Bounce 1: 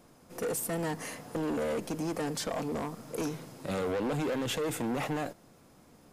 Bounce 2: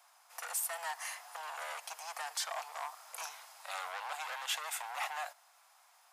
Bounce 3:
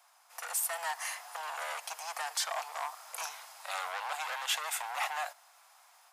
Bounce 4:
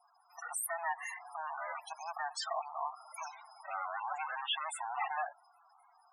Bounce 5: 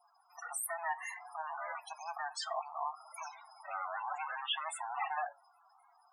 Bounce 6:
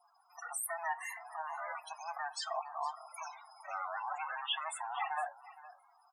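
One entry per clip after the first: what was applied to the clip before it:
steep high-pass 730 Hz 48 dB/octave
level rider gain up to 4 dB
loudest bins only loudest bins 16; trim +1 dB
flange 0.62 Hz, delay 5.7 ms, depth 2.3 ms, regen +75%; trim +3.5 dB
delay 464 ms -17.5 dB

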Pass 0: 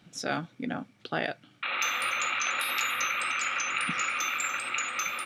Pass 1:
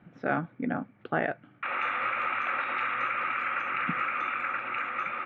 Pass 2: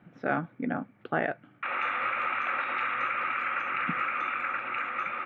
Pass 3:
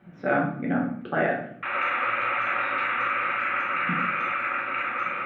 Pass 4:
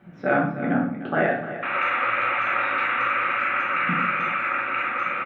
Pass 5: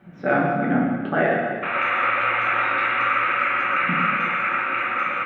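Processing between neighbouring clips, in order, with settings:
low-pass 2 kHz 24 dB/octave; trim +3 dB
bass shelf 78 Hz -5.5 dB
reverberation RT60 0.65 s, pre-delay 5 ms, DRR -2.5 dB
delay 303 ms -12 dB; trim +2.5 dB
plate-style reverb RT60 0.73 s, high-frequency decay 1×, pre-delay 90 ms, DRR 4.5 dB; trim +1 dB

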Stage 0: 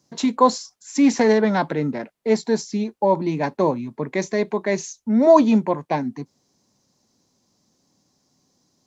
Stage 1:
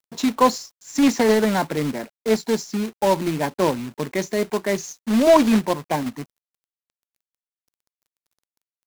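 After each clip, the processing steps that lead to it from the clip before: companded quantiser 4-bit; slew-rate limiter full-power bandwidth 500 Hz; trim -1 dB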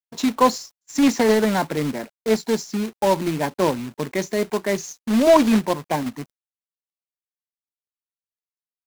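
gate -40 dBFS, range -32 dB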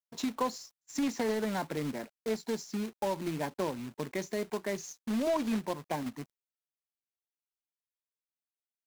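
compression 2.5:1, threshold -21 dBFS, peak gain reduction 8.5 dB; trim -9 dB

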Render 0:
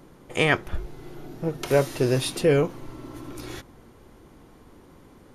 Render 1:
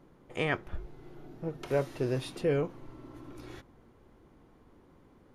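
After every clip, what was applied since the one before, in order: treble shelf 4.3 kHz -11 dB; trim -8.5 dB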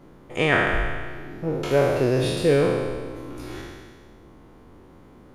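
spectral sustain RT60 1.65 s; trim +7.5 dB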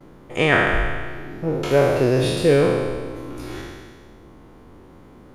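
gate with hold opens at -45 dBFS; trim +3 dB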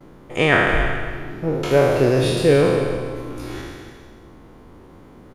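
delay 283 ms -12 dB; trim +1 dB

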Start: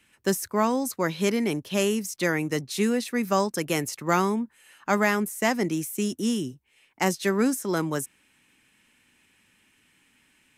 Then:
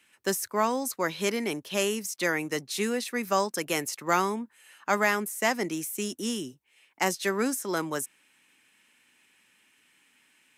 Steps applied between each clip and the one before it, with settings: high-pass 450 Hz 6 dB/octave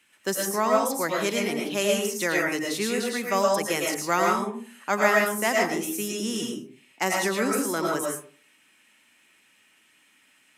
reverberation RT60 0.45 s, pre-delay 70 ms, DRR -1.5 dB

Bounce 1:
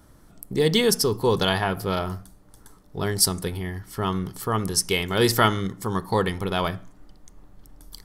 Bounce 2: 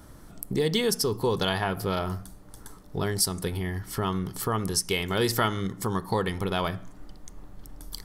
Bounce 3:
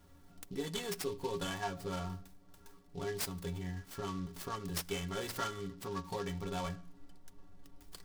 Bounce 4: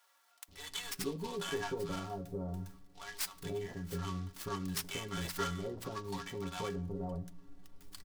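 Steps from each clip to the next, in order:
compression 2:1, threshold -34 dBFS, peak gain reduction 11.5 dB; trim +4.5 dB
inharmonic resonator 83 Hz, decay 0.28 s, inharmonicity 0.03; delay time shaken by noise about 3.7 kHz, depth 0.033 ms; trim -3.5 dB
bands offset in time highs, lows 480 ms, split 750 Hz; trim +1 dB

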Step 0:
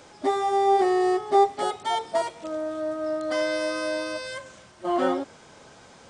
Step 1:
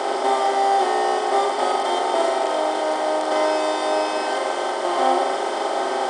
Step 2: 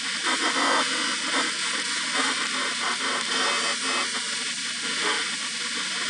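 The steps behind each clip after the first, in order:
spectral levelling over time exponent 0.2; high-pass 380 Hz 12 dB/octave; flutter echo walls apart 7.2 m, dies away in 0.5 s; trim -3 dB
spectral gate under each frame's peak -20 dB weak; trim +8.5 dB

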